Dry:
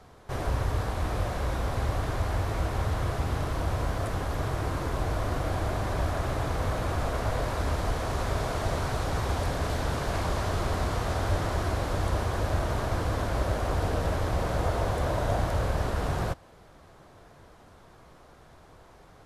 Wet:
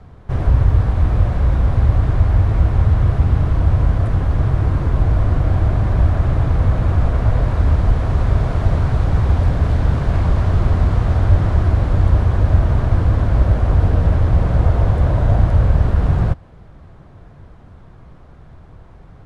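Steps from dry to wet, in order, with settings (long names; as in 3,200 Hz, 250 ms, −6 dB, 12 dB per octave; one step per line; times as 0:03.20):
low-pass filter 11,000 Hz 24 dB per octave
bass and treble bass +13 dB, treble −11 dB
level +3 dB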